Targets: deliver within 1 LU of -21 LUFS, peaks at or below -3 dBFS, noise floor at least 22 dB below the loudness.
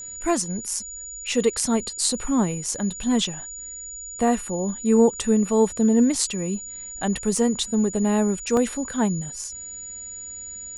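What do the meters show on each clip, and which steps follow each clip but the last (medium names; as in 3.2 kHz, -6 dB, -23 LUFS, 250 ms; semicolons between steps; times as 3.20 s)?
dropouts 2; longest dropout 1.7 ms; steady tone 6.9 kHz; tone level -34 dBFS; loudness -23.0 LUFS; peak level -5.5 dBFS; loudness target -21.0 LUFS
-> interpolate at 7.37/8.57 s, 1.7 ms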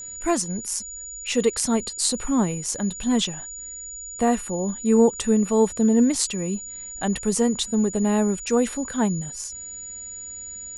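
dropouts 0; steady tone 6.9 kHz; tone level -34 dBFS
-> band-stop 6.9 kHz, Q 30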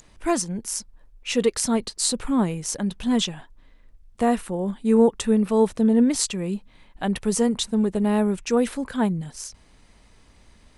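steady tone not found; loudness -23.0 LUFS; peak level -5.5 dBFS; loudness target -21.0 LUFS
-> trim +2 dB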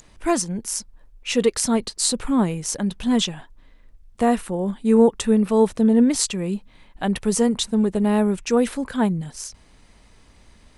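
loudness -21.0 LUFS; peak level -3.5 dBFS; noise floor -53 dBFS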